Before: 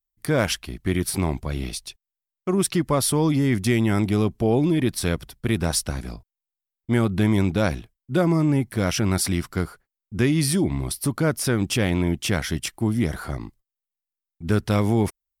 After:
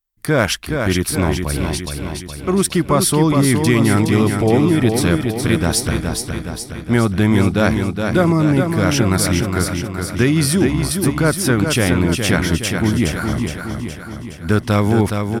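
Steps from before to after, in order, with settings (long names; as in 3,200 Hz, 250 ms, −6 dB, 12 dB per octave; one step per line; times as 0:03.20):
parametric band 1,400 Hz +3.5 dB 0.9 octaves
repeating echo 417 ms, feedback 57%, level −5.5 dB
level +5 dB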